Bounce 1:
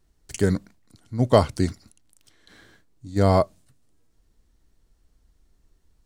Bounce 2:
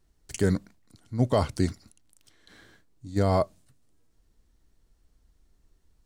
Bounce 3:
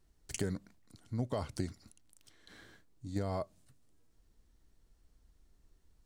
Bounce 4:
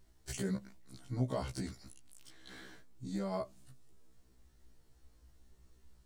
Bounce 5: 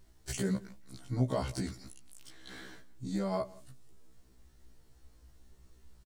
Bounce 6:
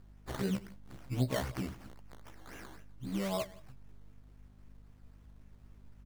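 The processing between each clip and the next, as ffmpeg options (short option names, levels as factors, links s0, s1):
-af "alimiter=limit=0.335:level=0:latency=1:release=15,volume=0.794"
-af "acompressor=threshold=0.0316:ratio=5,volume=0.75"
-af "alimiter=level_in=2:limit=0.0631:level=0:latency=1:release=41,volume=0.501,afftfilt=real='re*1.73*eq(mod(b,3),0)':imag='im*1.73*eq(mod(b,3),0)':win_size=2048:overlap=0.75,volume=2.24"
-af "aecho=1:1:170:0.075,volume=1.58"
-af "acrusher=samples=14:mix=1:aa=0.000001:lfo=1:lforange=8.4:lforate=3.8,aeval=exprs='val(0)+0.00178*(sin(2*PI*50*n/s)+sin(2*PI*2*50*n/s)/2+sin(2*PI*3*50*n/s)/3+sin(2*PI*4*50*n/s)/4+sin(2*PI*5*50*n/s)/5)':c=same,volume=0.841"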